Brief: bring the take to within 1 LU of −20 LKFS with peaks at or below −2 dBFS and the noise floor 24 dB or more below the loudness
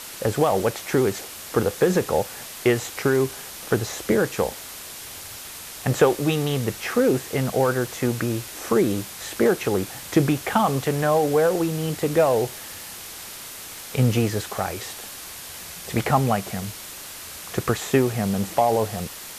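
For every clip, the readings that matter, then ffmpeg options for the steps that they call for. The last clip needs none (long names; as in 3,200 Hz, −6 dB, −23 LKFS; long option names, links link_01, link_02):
background noise floor −38 dBFS; target noise floor −47 dBFS; integrated loudness −23.0 LKFS; sample peak −5.5 dBFS; target loudness −20.0 LKFS
→ -af "afftdn=noise_reduction=9:noise_floor=-38"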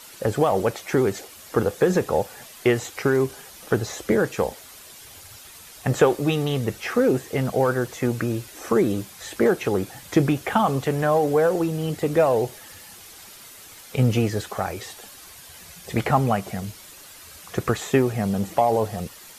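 background noise floor −45 dBFS; target noise floor −48 dBFS
→ -af "afftdn=noise_reduction=6:noise_floor=-45"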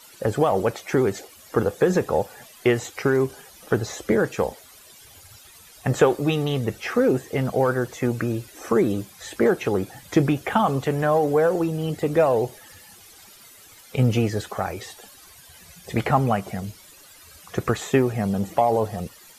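background noise floor −49 dBFS; integrated loudness −23.5 LKFS; sample peak −6.0 dBFS; target loudness −20.0 LKFS
→ -af "volume=3.5dB"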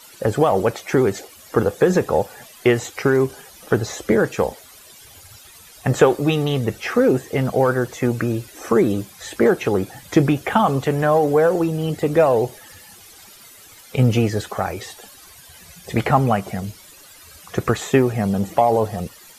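integrated loudness −20.0 LKFS; sample peak −2.5 dBFS; background noise floor −45 dBFS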